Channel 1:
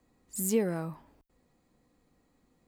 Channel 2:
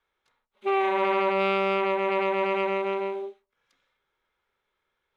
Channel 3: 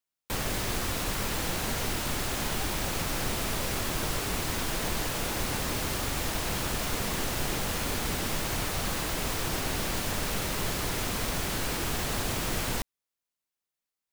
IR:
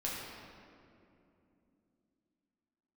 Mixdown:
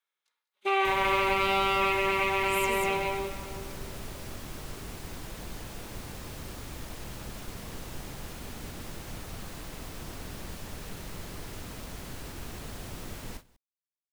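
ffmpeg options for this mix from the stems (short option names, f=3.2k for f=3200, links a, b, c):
-filter_complex "[0:a]tiltshelf=f=970:g=-8,adelay=2150,volume=-9.5dB,asplit=2[a][b];[b]volume=-7dB[c];[1:a]highpass=f=1.3k:p=1,highshelf=f=3.7k:g=12,volume=-1dB,asplit=3[d][e][f];[e]volume=-4.5dB[g];[f]volume=-10.5dB[h];[2:a]adelay=550,volume=-14dB,asplit=2[i][j];[j]volume=-6dB[k];[a][d]amix=inputs=2:normalize=0,acontrast=22,alimiter=limit=-23.5dB:level=0:latency=1:release=357,volume=0dB[l];[3:a]atrim=start_sample=2205[m];[g][m]afir=irnorm=-1:irlink=0[n];[c][h][k]amix=inputs=3:normalize=0,aecho=0:1:194:1[o];[i][l][n][o]amix=inputs=4:normalize=0,agate=range=-17dB:threshold=-45dB:ratio=16:detection=peak,lowshelf=f=390:g=6"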